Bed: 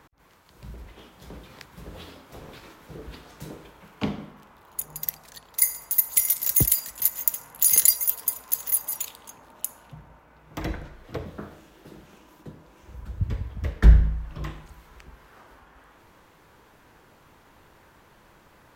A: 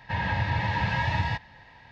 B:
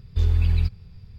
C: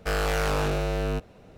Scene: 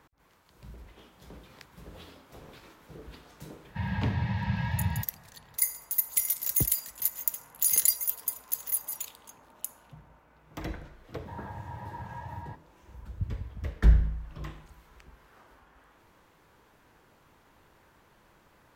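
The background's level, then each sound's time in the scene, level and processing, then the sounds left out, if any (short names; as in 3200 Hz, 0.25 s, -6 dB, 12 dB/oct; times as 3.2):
bed -6 dB
3.66 add A -10 dB + resonant low shelf 250 Hz +7 dB, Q 3
11.18 add A -14.5 dB + resonant high shelf 1700 Hz -13 dB, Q 1.5
not used: B, C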